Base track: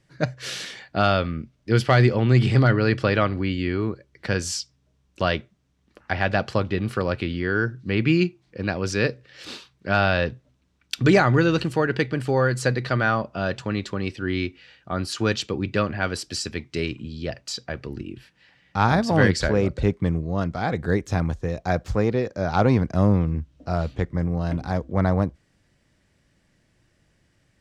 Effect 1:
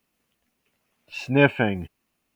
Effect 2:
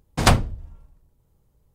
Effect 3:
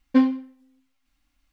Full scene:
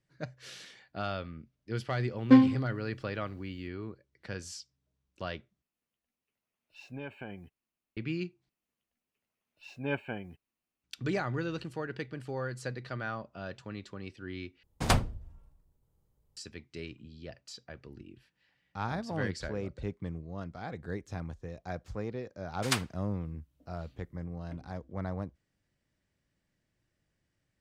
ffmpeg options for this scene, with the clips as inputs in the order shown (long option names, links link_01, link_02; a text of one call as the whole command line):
ffmpeg -i bed.wav -i cue0.wav -i cue1.wav -i cue2.wav -filter_complex "[1:a]asplit=2[link_01][link_02];[2:a]asplit=2[link_03][link_04];[0:a]volume=-15.5dB[link_05];[link_01]acompressor=threshold=-19dB:ratio=6:attack=3.2:release=140:knee=1:detection=peak[link_06];[link_04]highpass=1500[link_07];[link_05]asplit=4[link_08][link_09][link_10][link_11];[link_08]atrim=end=5.624[link_12];[link_06]atrim=end=2.35,asetpts=PTS-STARTPTS,volume=-17.5dB[link_13];[link_09]atrim=start=7.966:end=8.494[link_14];[link_02]atrim=end=2.35,asetpts=PTS-STARTPTS,volume=-16dB[link_15];[link_10]atrim=start=10.836:end=14.634[link_16];[link_03]atrim=end=1.74,asetpts=PTS-STARTPTS,volume=-9.5dB[link_17];[link_11]atrim=start=16.366[link_18];[3:a]atrim=end=1.52,asetpts=PTS-STARTPTS,volume=-0.5dB,afade=type=in:duration=0.004:curve=hsin,afade=type=out:start_time=1.516:duration=0.004:curve=hsin,adelay=2160[link_19];[link_07]atrim=end=1.74,asetpts=PTS-STARTPTS,volume=-8.5dB,afade=type=in:duration=0.004:curve=hsin,afade=type=out:start_time=1.736:duration=0.004:curve=hsin,adelay=22450[link_20];[link_12][link_13]acrossfade=duration=0.004:curve1=hsin:curve2=hsin[link_21];[link_21][link_14]acrossfade=duration=0.004:curve1=hsin:curve2=hsin[link_22];[link_22][link_15]acrossfade=duration=0.004:curve1=hsin:curve2=hsin[link_23];[link_23][link_16]acrossfade=duration=0.004:curve1=hsin:curve2=hsin[link_24];[link_24][link_17]acrossfade=duration=0.004:curve1=hsin:curve2=hsin[link_25];[link_25][link_18]acrossfade=duration=0.004:curve1=hsin:curve2=hsin[link_26];[link_26][link_19][link_20]amix=inputs=3:normalize=0" out.wav